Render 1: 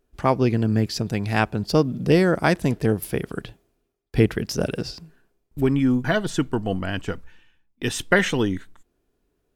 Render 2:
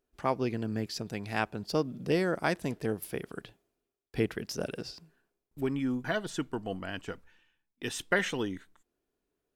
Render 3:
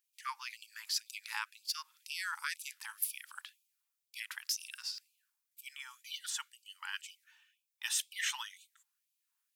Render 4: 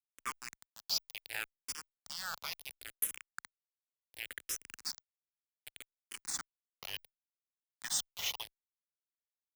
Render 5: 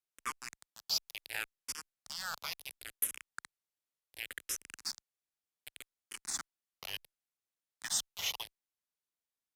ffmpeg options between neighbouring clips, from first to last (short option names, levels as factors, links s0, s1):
-af "lowshelf=f=160:g=-10,volume=0.376"
-af "alimiter=limit=0.112:level=0:latency=1:release=134,highshelf=f=4600:g=11,afftfilt=real='re*gte(b*sr/1024,790*pow(2300/790,0.5+0.5*sin(2*PI*2*pts/sr)))':imag='im*gte(b*sr/1024,790*pow(2300/790,0.5+0.5*sin(2*PI*2*pts/sr)))':win_size=1024:overlap=0.75,volume=0.841"
-filter_complex "[0:a]acrusher=bits=5:mix=0:aa=0.000001,asplit=2[s0][s1];[s1]afreqshift=-0.69[s2];[s0][s2]amix=inputs=2:normalize=1,volume=1.19"
-af "aresample=32000,aresample=44100,volume=1.12"